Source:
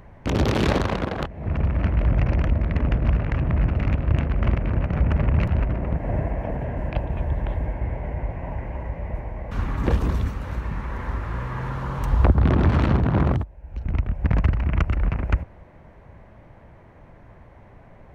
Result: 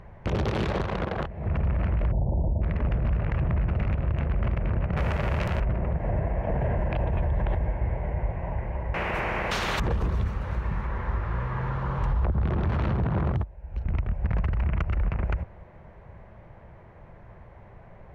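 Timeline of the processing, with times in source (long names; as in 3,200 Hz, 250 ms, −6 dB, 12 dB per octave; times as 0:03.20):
0:02.12–0:02.62: Chebyshev low-pass filter 920 Hz, order 6
0:04.96–0:05.59: spectral envelope flattened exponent 0.6
0:06.47–0:07.55: envelope flattener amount 70%
0:08.94–0:09.80: every bin compressed towards the loudest bin 4 to 1
0:10.87–0:12.42: high-frequency loss of the air 69 metres
whole clip: low-pass filter 3,200 Hz 6 dB per octave; parametric band 270 Hz −14.5 dB 0.22 octaves; brickwall limiter −18 dBFS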